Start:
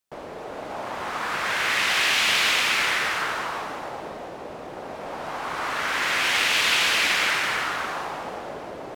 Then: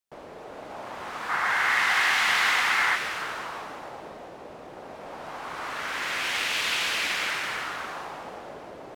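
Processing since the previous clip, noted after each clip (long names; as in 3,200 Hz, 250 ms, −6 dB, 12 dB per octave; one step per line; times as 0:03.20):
gain on a spectral selection 0:01.30–0:02.95, 710–2,200 Hz +8 dB
level −6 dB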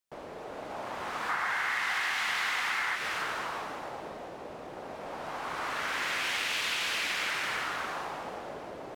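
downward compressor 6 to 1, threshold −28 dBFS, peak gain reduction 8.5 dB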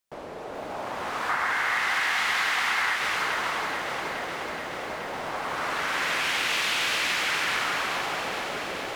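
feedback echo at a low word length 425 ms, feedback 80%, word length 10 bits, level −8 dB
level +4.5 dB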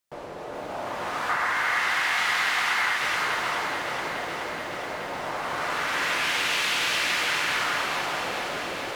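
convolution reverb, pre-delay 3 ms, DRR 6.5 dB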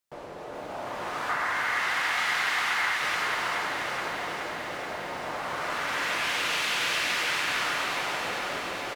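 single-tap delay 753 ms −8 dB
level −3 dB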